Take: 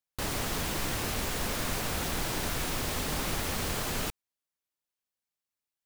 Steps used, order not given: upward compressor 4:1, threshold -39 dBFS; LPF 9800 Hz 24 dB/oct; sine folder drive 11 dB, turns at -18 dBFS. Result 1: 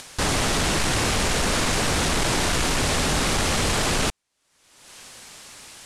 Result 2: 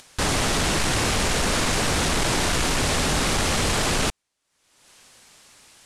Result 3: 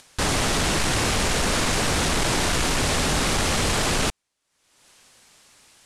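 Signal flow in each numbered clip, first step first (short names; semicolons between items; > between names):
upward compressor > sine folder > LPF; sine folder > LPF > upward compressor; sine folder > upward compressor > LPF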